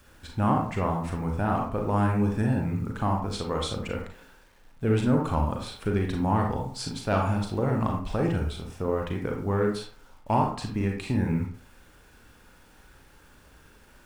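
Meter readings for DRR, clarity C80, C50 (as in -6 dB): 1.0 dB, 9.5 dB, 4.5 dB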